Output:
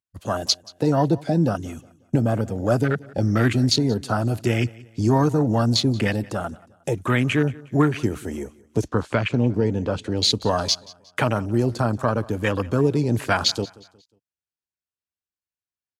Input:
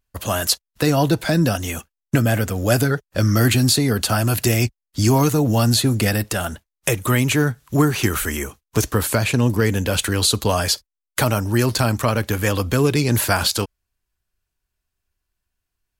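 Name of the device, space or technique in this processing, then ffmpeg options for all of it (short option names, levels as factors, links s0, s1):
over-cleaned archive recording: -filter_complex "[0:a]highpass=110,lowpass=7900,afwtdn=0.0708,asettb=1/sr,asplit=3[s0][s1][s2];[s0]atrim=end=8.884[s3];[s1]atrim=start=8.88:end=10.18,asetpts=PTS-STARTPTS,afade=t=in:d=0.004:c=qsin,afade=t=out:st=1.296:d=0.004:c=qsin,lowpass=5600[s4];[s2]atrim=start=10.176[s5];[s3][s4]acrossfade=d=0.004:c1=hsin:c2=qsin[s6];[s6][s5]acrossfade=d=0.004:c1=qsin:c2=hsin,highshelf=f=4400:g=6,aecho=1:1:180|360|540:0.0794|0.0302|0.0115,volume=0.841"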